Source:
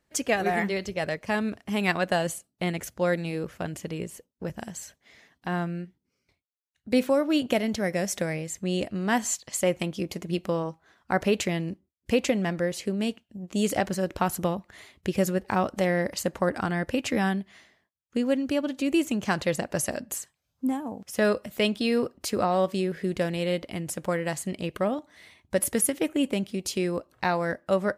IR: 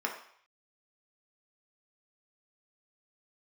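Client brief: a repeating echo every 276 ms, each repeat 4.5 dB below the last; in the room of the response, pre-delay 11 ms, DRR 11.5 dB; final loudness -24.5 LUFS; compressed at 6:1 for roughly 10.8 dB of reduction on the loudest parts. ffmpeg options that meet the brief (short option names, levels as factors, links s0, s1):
-filter_complex "[0:a]acompressor=threshold=0.0316:ratio=6,aecho=1:1:276|552|828|1104|1380|1656|1932|2208|2484:0.596|0.357|0.214|0.129|0.0772|0.0463|0.0278|0.0167|0.01,asplit=2[s0][s1];[1:a]atrim=start_sample=2205,adelay=11[s2];[s1][s2]afir=irnorm=-1:irlink=0,volume=0.133[s3];[s0][s3]amix=inputs=2:normalize=0,volume=2.82"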